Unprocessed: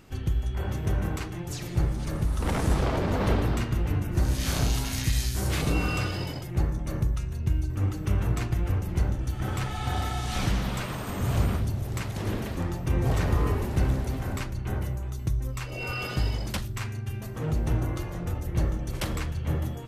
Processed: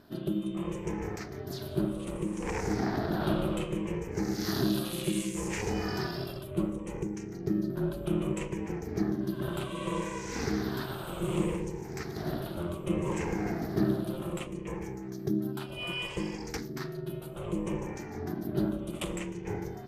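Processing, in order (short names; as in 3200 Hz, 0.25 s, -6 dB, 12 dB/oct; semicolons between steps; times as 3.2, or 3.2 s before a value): moving spectral ripple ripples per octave 0.6, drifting -0.65 Hz, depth 16 dB; ring modulator 260 Hz; added harmonics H 2 -26 dB, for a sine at -10 dBFS; gain -5 dB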